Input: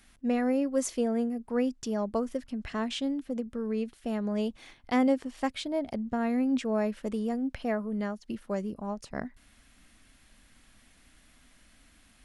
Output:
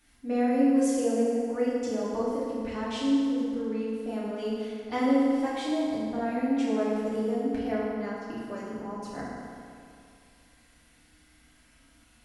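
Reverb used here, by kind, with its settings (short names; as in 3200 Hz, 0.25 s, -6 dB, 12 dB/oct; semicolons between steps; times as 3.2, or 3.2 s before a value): FDN reverb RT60 2.4 s, low-frequency decay 0.9×, high-frequency decay 0.7×, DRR -9 dB; gain -8.5 dB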